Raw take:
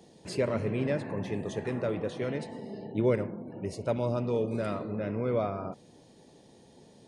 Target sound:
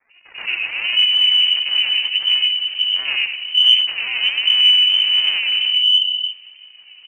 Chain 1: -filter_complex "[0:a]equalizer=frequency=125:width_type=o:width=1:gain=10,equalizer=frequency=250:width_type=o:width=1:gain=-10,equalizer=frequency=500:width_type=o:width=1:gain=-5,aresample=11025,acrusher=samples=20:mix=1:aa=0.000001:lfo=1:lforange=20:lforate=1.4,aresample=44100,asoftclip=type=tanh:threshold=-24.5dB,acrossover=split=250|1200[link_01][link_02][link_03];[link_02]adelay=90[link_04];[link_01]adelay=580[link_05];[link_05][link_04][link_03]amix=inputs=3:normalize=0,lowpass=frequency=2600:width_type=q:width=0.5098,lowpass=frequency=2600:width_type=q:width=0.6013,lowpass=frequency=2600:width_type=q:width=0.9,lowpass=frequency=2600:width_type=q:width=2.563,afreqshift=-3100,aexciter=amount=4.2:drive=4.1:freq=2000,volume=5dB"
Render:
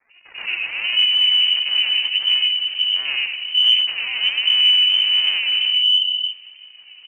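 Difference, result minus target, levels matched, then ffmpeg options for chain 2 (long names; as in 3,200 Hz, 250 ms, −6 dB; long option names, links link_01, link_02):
soft clipping: distortion +13 dB
-filter_complex "[0:a]equalizer=frequency=125:width_type=o:width=1:gain=10,equalizer=frequency=250:width_type=o:width=1:gain=-10,equalizer=frequency=500:width_type=o:width=1:gain=-5,aresample=11025,acrusher=samples=20:mix=1:aa=0.000001:lfo=1:lforange=20:lforate=1.4,aresample=44100,asoftclip=type=tanh:threshold=-16dB,acrossover=split=250|1200[link_01][link_02][link_03];[link_02]adelay=90[link_04];[link_01]adelay=580[link_05];[link_05][link_04][link_03]amix=inputs=3:normalize=0,lowpass=frequency=2600:width_type=q:width=0.5098,lowpass=frequency=2600:width_type=q:width=0.6013,lowpass=frequency=2600:width_type=q:width=0.9,lowpass=frequency=2600:width_type=q:width=2.563,afreqshift=-3100,aexciter=amount=4.2:drive=4.1:freq=2000,volume=5dB"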